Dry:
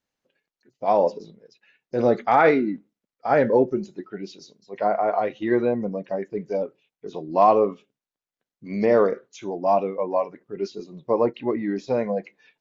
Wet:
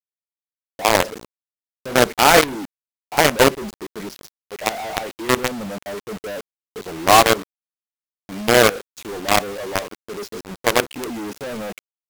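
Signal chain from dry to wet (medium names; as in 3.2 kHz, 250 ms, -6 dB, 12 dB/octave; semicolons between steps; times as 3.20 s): companded quantiser 2-bit; speed mistake 24 fps film run at 25 fps; trim -3 dB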